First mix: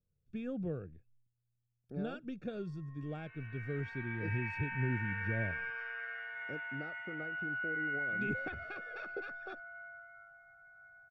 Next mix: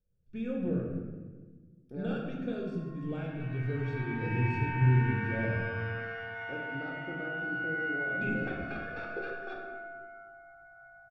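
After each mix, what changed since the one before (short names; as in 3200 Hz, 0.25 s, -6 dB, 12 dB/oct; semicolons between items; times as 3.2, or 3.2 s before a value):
background: remove band-pass 1900 Hz, Q 1.8; reverb: on, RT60 1.4 s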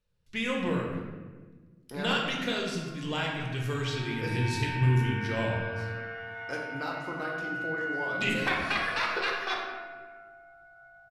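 speech: remove running mean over 44 samples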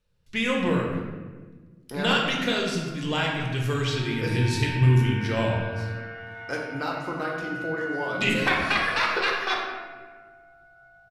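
speech +5.5 dB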